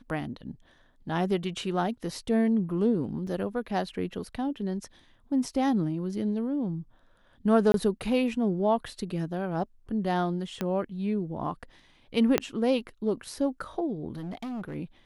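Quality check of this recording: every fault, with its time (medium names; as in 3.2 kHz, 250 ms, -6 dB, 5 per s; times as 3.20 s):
3.27 s: dropout 3.6 ms
7.72–7.74 s: dropout 22 ms
10.61 s: pop -16 dBFS
12.38 s: pop -8 dBFS
14.13–14.76 s: clipped -32.5 dBFS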